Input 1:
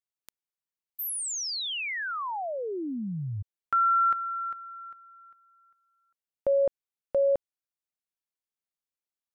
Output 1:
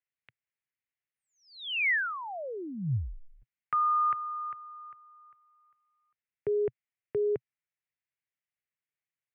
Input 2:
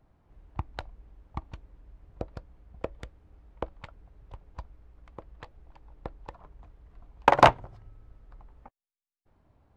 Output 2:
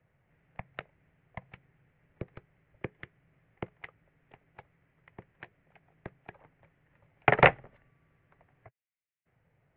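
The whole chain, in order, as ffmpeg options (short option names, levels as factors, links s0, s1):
-af "highpass=f=190:t=q:w=0.5412,highpass=f=190:t=q:w=1.307,lowpass=f=3200:t=q:w=0.5176,lowpass=f=3200:t=q:w=0.7071,lowpass=f=3200:t=q:w=1.932,afreqshift=-140,equalizer=f=125:t=o:w=1:g=11,equalizer=f=250:t=o:w=1:g=-5,equalizer=f=1000:t=o:w=1:g=-5,equalizer=f=2000:t=o:w=1:g=12,volume=0.668"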